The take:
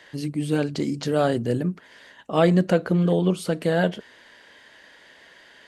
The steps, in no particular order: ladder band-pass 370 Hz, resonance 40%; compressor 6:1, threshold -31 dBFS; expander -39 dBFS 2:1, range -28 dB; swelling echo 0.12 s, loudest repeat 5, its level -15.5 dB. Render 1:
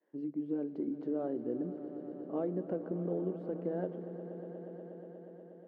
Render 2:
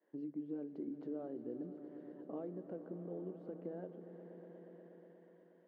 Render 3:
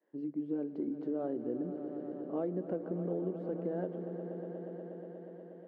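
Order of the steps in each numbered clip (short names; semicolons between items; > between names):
expander > ladder band-pass > compressor > swelling echo; compressor > swelling echo > expander > ladder band-pass; swelling echo > expander > ladder band-pass > compressor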